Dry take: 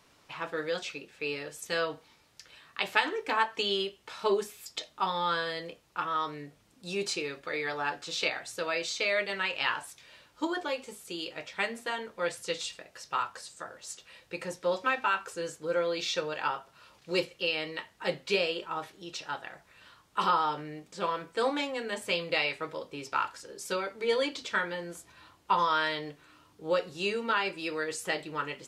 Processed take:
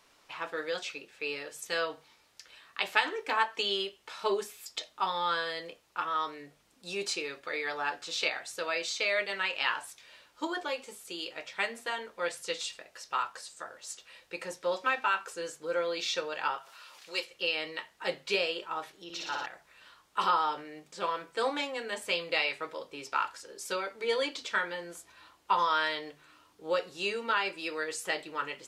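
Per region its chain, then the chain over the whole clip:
16.58–17.3 HPF 1200 Hz 6 dB/oct + upward compressor, threshold -41 dBFS
19.04–19.46 bell 8500 Hz -9 dB 0.55 oct + flutter echo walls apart 10.1 m, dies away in 1.4 s
whole clip: bell 120 Hz -9.5 dB 2.6 oct; notches 50/100/150 Hz

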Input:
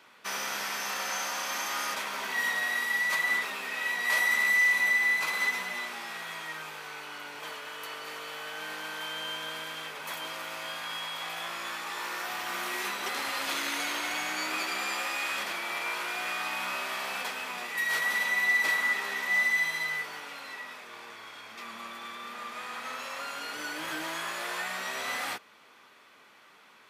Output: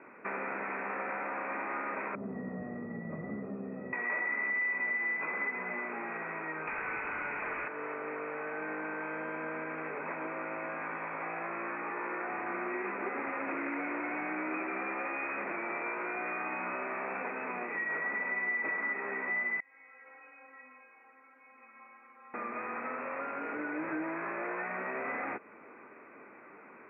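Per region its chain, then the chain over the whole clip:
2.15–3.93 band-pass 170 Hz, Q 1.3 + tilt -4.5 dB/oct + comb 1.6 ms, depth 48%
6.67–7.68 tilt +4 dB/oct + overdrive pedal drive 18 dB, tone 3100 Hz, clips at -23 dBFS
19.6–22.34 weighting filter A + compressor 2.5:1, threshold -35 dBFS + metallic resonator 260 Hz, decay 0.34 s, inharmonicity 0.002
whole clip: Chebyshev low-pass 2500 Hz, order 8; bell 320 Hz +11.5 dB 1.8 oct; compressor 2.5:1, threshold -38 dBFS; gain +2 dB

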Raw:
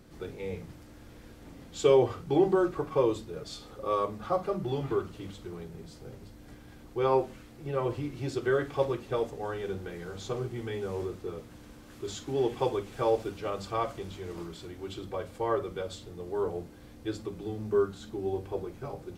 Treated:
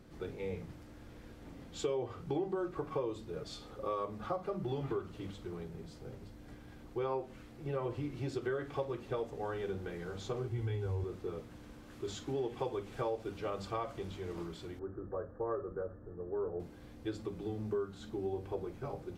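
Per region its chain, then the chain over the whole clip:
10.49–11.04 resonant low shelf 130 Hz +9 dB, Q 3 + notch comb 610 Hz
14.79–16.6 rippled Chebyshev low-pass 1800 Hz, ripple 6 dB + low shelf 77 Hz +9 dB
whole clip: high shelf 4800 Hz -6.5 dB; compressor 5:1, threshold -31 dBFS; gain -2 dB

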